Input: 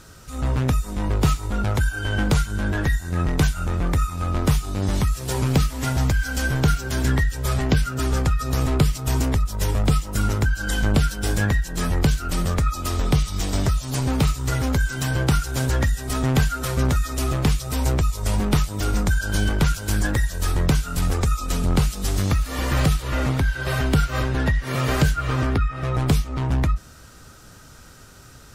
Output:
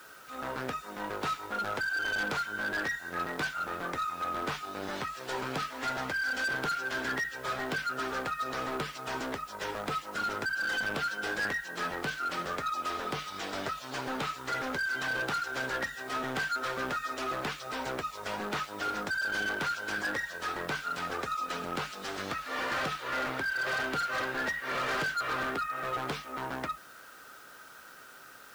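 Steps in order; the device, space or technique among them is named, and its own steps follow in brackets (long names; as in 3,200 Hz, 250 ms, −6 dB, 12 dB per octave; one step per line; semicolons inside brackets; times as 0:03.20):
drive-through speaker (band-pass filter 450–3,500 Hz; parametric band 1,500 Hz +6 dB 0.53 octaves; hard clipping −25.5 dBFS, distortion −9 dB; white noise bed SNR 24 dB)
level −3 dB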